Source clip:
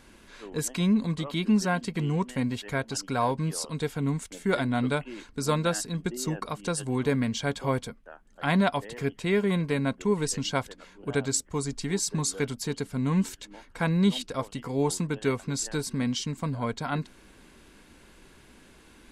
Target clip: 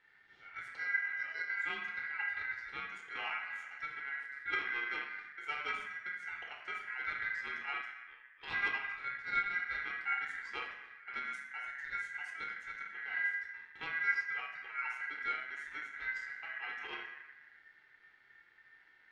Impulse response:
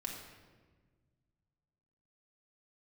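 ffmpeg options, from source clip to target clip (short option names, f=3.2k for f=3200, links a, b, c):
-filter_complex "[0:a]flanger=delay=7.4:depth=4.9:regen=80:speed=0.3:shape=triangular[a];[1:a]atrim=start_sample=2205,asetrate=79380,aresample=44100[b];[a][b]afir=irnorm=-1:irlink=0,adynamicsmooth=sensitivity=1.5:basefreq=2k,aeval=exprs='val(0)*sin(2*PI*1800*n/s)':c=same,asettb=1/sr,asplit=3[c][d][e];[c]atrim=end=7.814[f];[d]atrim=start=7.81:end=8.51,asetpts=PTS-STARTPTS,afade=t=in:d=0.004:c=qsin,afade=t=out:st=0.696:d=0.004:c=qsin,equalizer=f=250:t=o:w=2.2:g=-9.5[g];[e]atrim=start=8.506[h];[f][g]acrossfade=d=0.004:c1=hsin:c2=qsin[i];[i][h]acrossfade=d=0.004:c1=qsin:c2=hsin"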